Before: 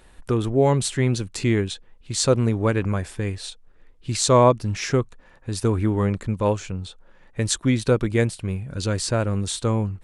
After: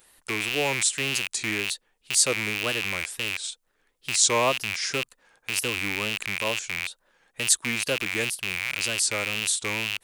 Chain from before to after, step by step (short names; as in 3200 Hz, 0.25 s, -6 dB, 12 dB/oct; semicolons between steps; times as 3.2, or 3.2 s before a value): rattling part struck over -38 dBFS, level -12 dBFS; wow and flutter 140 cents; RIAA curve recording; gain -6.5 dB